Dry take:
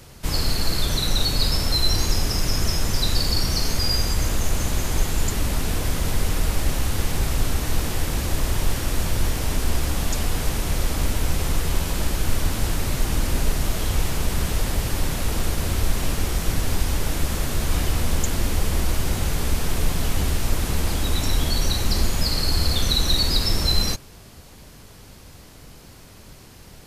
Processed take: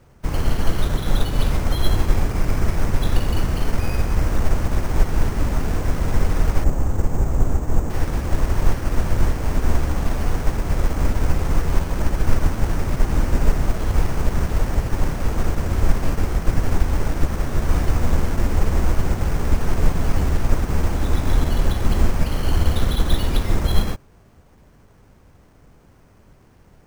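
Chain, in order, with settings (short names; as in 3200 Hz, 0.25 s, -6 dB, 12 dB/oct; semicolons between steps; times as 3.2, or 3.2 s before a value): LPF 1900 Hz 12 dB/oct, from 6.64 s 1000 Hz, from 7.9 s 1900 Hz; careless resampling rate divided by 6×, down none, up hold; upward expander 1.5:1, over -37 dBFS; gain +6.5 dB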